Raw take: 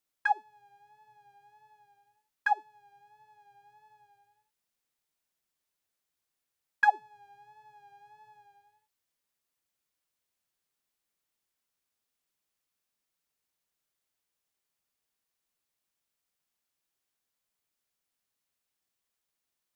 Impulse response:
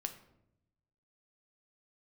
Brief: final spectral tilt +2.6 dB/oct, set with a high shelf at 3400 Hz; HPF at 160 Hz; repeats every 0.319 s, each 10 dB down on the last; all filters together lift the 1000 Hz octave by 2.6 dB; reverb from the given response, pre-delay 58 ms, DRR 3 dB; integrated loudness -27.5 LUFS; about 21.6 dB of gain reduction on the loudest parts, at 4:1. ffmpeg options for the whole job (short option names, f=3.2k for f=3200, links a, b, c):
-filter_complex "[0:a]highpass=160,equalizer=f=1k:t=o:g=3,highshelf=f=3.4k:g=5,acompressor=threshold=-43dB:ratio=4,aecho=1:1:319|638|957|1276:0.316|0.101|0.0324|0.0104,asplit=2[a][b];[1:a]atrim=start_sample=2205,adelay=58[c];[b][c]afir=irnorm=-1:irlink=0,volume=-2dB[d];[a][d]amix=inputs=2:normalize=0,volume=22dB"